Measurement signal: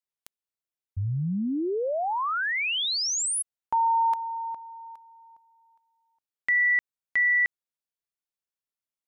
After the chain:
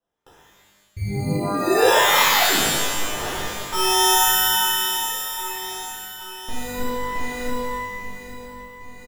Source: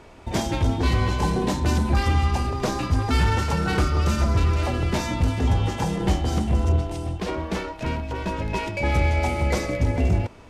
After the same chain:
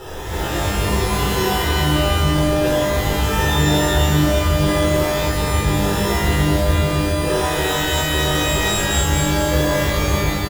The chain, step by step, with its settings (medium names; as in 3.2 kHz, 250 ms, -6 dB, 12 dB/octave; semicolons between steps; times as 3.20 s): tracing distortion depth 0.42 ms; on a send: feedback delay 823 ms, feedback 52%, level -22.5 dB; on the sum: compression 2:1, threshold -47 dBFS; dynamic bell 110 Hz, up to -4 dB, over -53 dBFS, Q 1.9; low-pass 1.7 kHz 12 dB/octave; reverse; upward compressor 1.5:1, threshold -59 dBFS; reverse; peak limiter -32.5 dBFS; comb 2.1 ms, depth 86%; sample-and-hold 20×; pitch-shifted reverb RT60 1.2 s, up +12 st, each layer -2 dB, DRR -9.5 dB; trim +6.5 dB